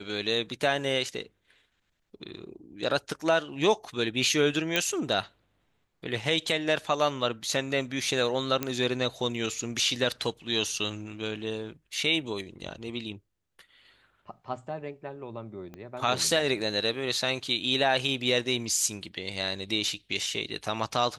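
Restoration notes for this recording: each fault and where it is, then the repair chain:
4.76 s: pop -10 dBFS
8.63 s: pop -12 dBFS
15.74 s: pop -29 dBFS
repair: de-click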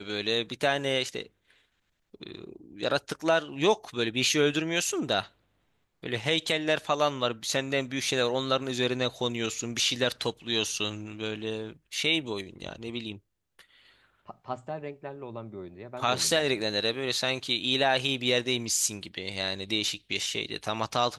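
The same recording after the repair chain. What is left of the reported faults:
15.74 s: pop

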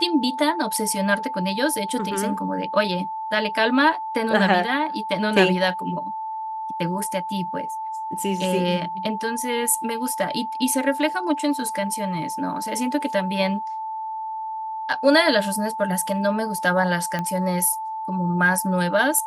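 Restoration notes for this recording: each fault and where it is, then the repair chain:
whine 880 Hz -27 dBFS
17.19 s: pop -13 dBFS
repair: de-click; band-stop 880 Hz, Q 30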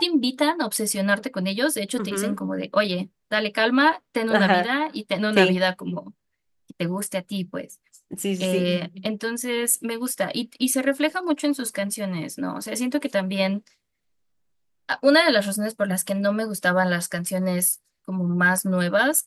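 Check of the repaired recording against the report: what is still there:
nothing left

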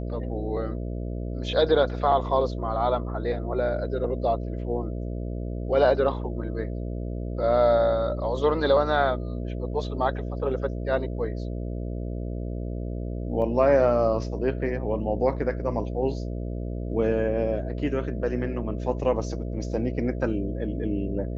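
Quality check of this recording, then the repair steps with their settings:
buzz 60 Hz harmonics 11 -31 dBFS
13.42 s: dropout 2 ms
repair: de-hum 60 Hz, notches 11; interpolate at 13.42 s, 2 ms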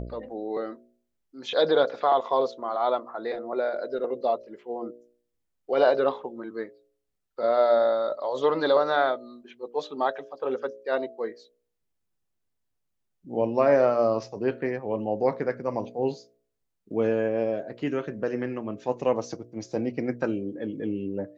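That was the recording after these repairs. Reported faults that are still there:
nothing left

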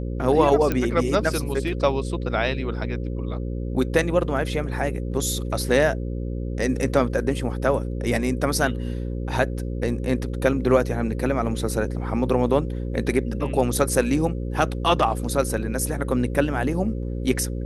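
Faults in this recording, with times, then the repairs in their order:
buzz 60 Hz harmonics 9 -28 dBFS
0.72 s: pop -10 dBFS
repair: de-click; de-hum 60 Hz, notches 9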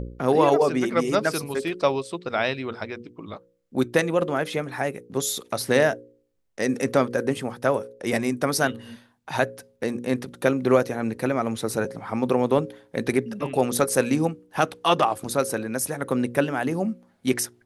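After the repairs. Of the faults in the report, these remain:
nothing left

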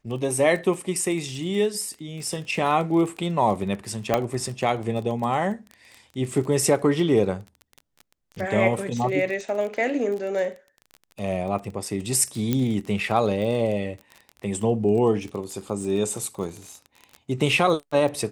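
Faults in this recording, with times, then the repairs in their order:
crackle 23 per s -30 dBFS
4.14 s: pop -7 dBFS
12.53 s: pop -10 dBFS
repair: de-click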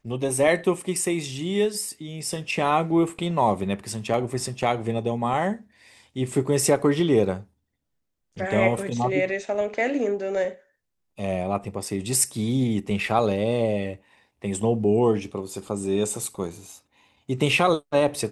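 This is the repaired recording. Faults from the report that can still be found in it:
4.14 s: pop

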